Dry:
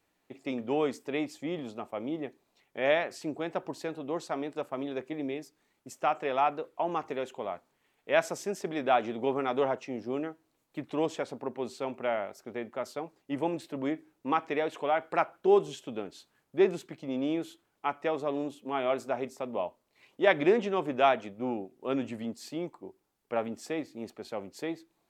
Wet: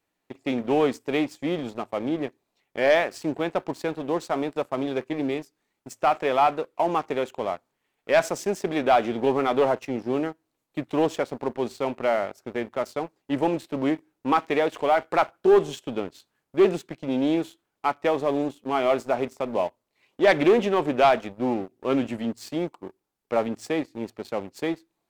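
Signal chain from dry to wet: de-hum 54.76 Hz, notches 2; sample leveller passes 2; Doppler distortion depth 0.12 ms

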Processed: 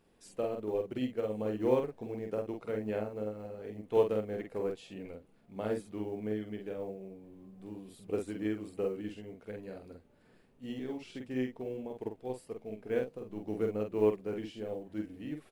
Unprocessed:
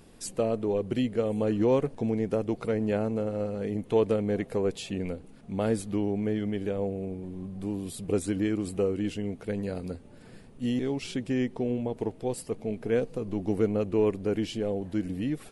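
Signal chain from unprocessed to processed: tone controls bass -6 dB, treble -7 dB; companded quantiser 8-bit; doubler 47 ms -3 dB; upward expander 1.5:1, over -36 dBFS; gain -3.5 dB

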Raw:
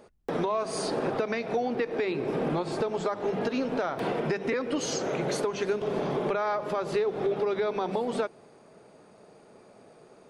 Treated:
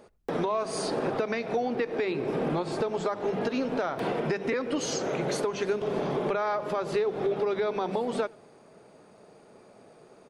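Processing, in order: speakerphone echo 90 ms, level -25 dB

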